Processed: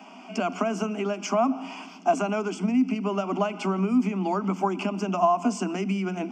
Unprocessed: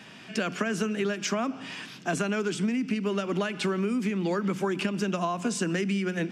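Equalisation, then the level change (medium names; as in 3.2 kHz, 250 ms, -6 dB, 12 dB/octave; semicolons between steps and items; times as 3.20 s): rippled Chebyshev high-pass 180 Hz, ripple 9 dB; peaking EQ 530 Hz +14.5 dB 1.4 oct; static phaser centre 2.6 kHz, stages 8; +6.5 dB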